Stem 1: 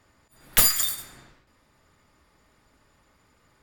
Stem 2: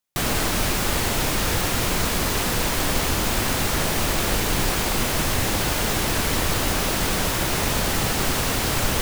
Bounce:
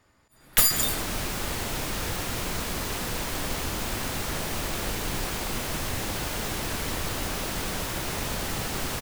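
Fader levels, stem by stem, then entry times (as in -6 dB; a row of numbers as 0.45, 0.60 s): -1.5, -8.0 dB; 0.00, 0.55 s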